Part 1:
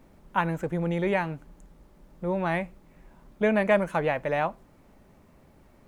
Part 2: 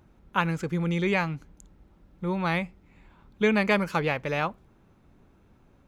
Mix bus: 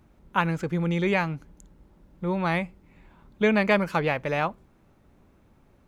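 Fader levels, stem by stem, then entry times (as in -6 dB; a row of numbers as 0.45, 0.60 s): -8.5, -1.5 dB; 0.00, 0.00 s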